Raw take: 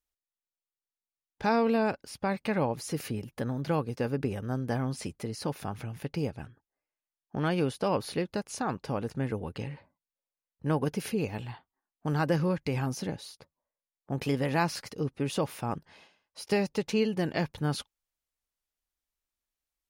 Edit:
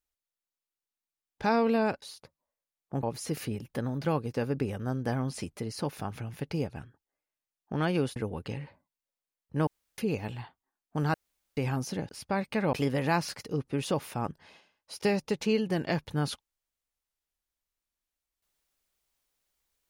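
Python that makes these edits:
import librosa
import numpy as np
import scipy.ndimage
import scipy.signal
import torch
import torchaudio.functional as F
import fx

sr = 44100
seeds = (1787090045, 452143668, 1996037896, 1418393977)

y = fx.edit(x, sr, fx.swap(start_s=2.02, length_s=0.64, other_s=13.19, other_length_s=1.01),
    fx.cut(start_s=7.79, length_s=1.47),
    fx.room_tone_fill(start_s=10.77, length_s=0.31),
    fx.room_tone_fill(start_s=12.24, length_s=0.43), tone=tone)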